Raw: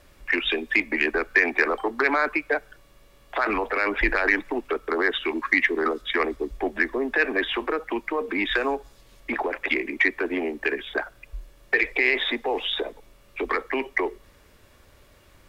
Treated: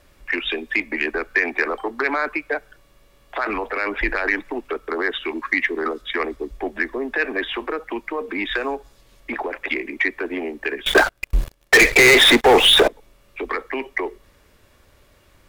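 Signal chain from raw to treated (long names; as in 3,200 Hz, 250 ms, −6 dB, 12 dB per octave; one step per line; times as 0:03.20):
0:10.86–0:12.88: leveller curve on the samples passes 5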